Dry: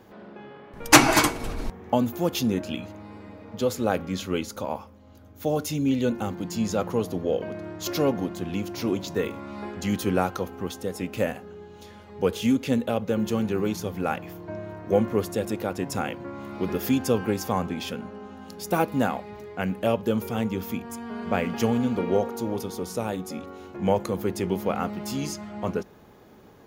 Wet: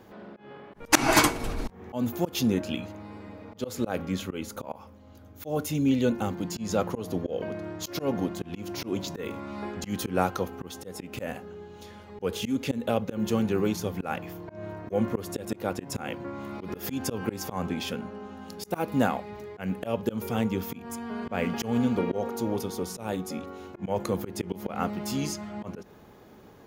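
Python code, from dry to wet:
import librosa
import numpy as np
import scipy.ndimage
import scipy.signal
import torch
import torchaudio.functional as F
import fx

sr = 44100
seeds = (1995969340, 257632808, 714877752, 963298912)

y = fx.auto_swell(x, sr, attack_ms=151.0)
y = fx.dynamic_eq(y, sr, hz=5000.0, q=1.2, threshold_db=-51.0, ratio=4.0, max_db=-6, at=(3.99, 5.75))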